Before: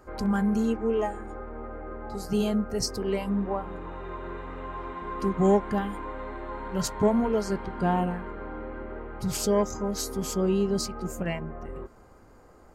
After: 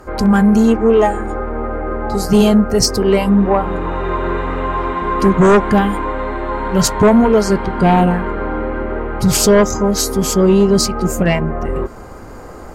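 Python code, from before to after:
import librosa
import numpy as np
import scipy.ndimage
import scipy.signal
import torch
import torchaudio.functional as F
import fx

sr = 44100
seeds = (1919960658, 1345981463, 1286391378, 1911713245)

p1 = fx.rider(x, sr, range_db=10, speed_s=2.0)
p2 = x + (p1 * 10.0 ** (-2.0 / 20.0))
y = fx.fold_sine(p2, sr, drive_db=6, ceiling_db=-4.5)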